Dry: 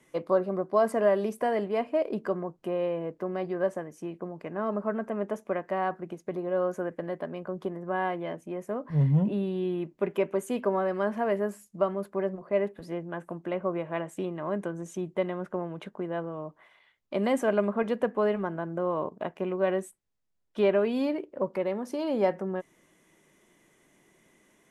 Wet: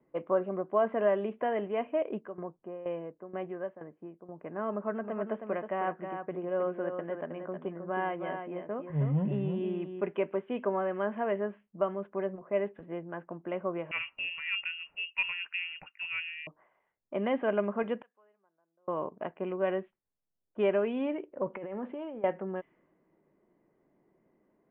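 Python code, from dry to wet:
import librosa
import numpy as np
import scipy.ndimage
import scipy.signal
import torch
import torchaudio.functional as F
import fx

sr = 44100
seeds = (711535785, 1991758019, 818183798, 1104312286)

y = fx.tremolo_shape(x, sr, shape='saw_down', hz=2.1, depth_pct=80, at=(2.17, 4.4), fade=0.02)
y = fx.echo_single(y, sr, ms=316, db=-7.0, at=(5.03, 10.0), fade=0.02)
y = fx.freq_invert(y, sr, carrier_hz=3000, at=(13.91, 16.47))
y = fx.bandpass_q(y, sr, hz=7000.0, q=4.7, at=(18.02, 18.88))
y = fx.over_compress(y, sr, threshold_db=-35.0, ratio=-1.0, at=(21.45, 22.24))
y = fx.env_lowpass(y, sr, base_hz=780.0, full_db=-23.5)
y = scipy.signal.sosfilt(scipy.signal.butter(12, 3200.0, 'lowpass', fs=sr, output='sos'), y)
y = fx.low_shelf(y, sr, hz=150.0, db=-5.5)
y = y * librosa.db_to_amplitude(-3.0)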